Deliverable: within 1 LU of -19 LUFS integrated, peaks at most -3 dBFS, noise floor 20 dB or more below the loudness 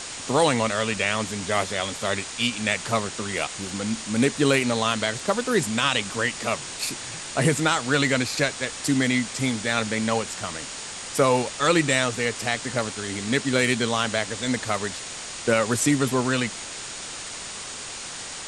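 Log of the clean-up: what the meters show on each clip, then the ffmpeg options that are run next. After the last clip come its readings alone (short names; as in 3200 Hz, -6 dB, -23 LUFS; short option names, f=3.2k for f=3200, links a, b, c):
steady tone 6800 Hz; tone level -44 dBFS; noise floor -36 dBFS; noise floor target -45 dBFS; loudness -24.5 LUFS; peak -7.0 dBFS; loudness target -19.0 LUFS
-> -af "bandreject=f=6.8k:w=30"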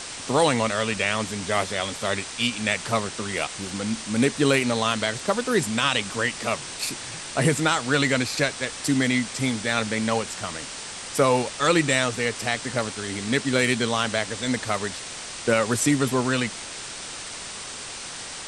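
steady tone none; noise floor -36 dBFS; noise floor target -45 dBFS
-> -af "afftdn=nr=9:nf=-36"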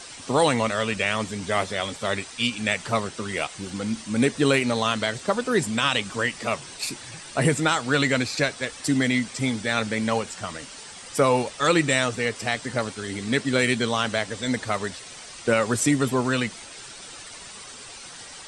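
noise floor -42 dBFS; noise floor target -45 dBFS
-> -af "afftdn=nr=6:nf=-42"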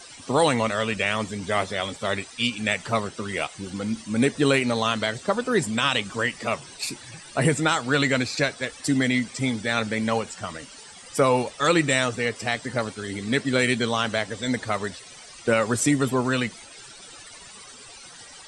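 noise floor -45 dBFS; loudness -24.5 LUFS; peak -7.5 dBFS; loudness target -19.0 LUFS
-> -af "volume=5.5dB,alimiter=limit=-3dB:level=0:latency=1"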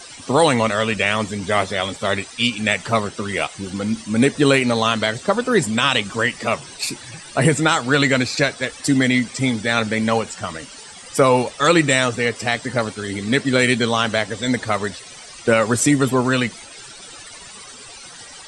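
loudness -19.0 LUFS; peak -3.0 dBFS; noise floor -39 dBFS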